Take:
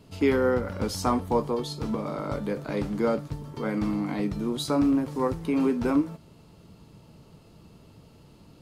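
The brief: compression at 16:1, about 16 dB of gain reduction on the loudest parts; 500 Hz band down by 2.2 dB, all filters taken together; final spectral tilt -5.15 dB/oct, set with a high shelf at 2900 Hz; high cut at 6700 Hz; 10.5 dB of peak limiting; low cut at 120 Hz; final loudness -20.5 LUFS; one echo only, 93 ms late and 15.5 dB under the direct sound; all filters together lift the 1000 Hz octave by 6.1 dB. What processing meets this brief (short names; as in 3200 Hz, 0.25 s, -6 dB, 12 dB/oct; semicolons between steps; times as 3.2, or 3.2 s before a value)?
HPF 120 Hz; LPF 6700 Hz; bell 500 Hz -4.5 dB; bell 1000 Hz +8 dB; high shelf 2900 Hz +4.5 dB; compressor 16:1, threshold -32 dBFS; limiter -29.5 dBFS; echo 93 ms -15.5 dB; gain +18.5 dB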